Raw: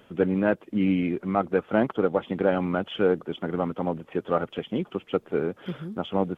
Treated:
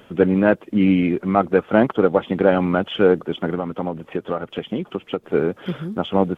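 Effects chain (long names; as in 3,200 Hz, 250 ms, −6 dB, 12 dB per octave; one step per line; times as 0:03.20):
0:03.53–0:05.24: downward compressor 10 to 1, threshold −27 dBFS, peak gain reduction 10 dB
level +7 dB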